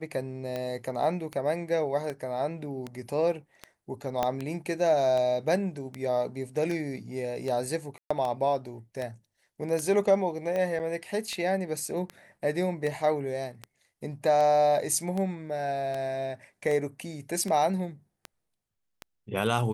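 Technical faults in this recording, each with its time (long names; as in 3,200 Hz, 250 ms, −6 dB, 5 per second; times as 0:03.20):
scratch tick 78 rpm −20 dBFS
0:04.23: click −13 dBFS
0:07.98–0:08.11: drop-out 125 ms
0:10.79–0:10.80: drop-out 7.6 ms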